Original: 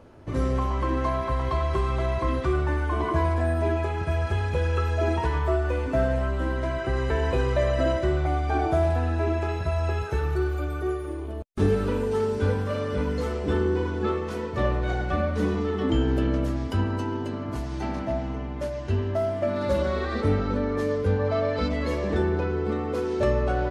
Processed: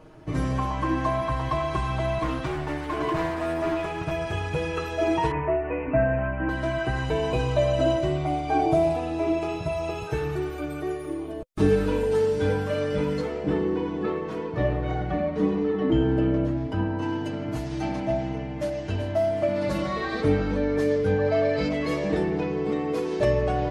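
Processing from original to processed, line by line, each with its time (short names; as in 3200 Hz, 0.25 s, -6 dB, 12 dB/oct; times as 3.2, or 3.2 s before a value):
2.21–4.11 hard clip -23 dBFS
5.31–6.49 steep low-pass 2700 Hz 72 dB/oct
7.05–10.1 bell 1700 Hz -11 dB 0.32 oct
13.2–17.01 LPF 2300 Hz -> 1100 Hz 6 dB/oct
18.25–18.74 echo throw 0.38 s, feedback 50%, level -10 dB
whole clip: notch 510 Hz, Q 12; comb 6.4 ms, depth 85%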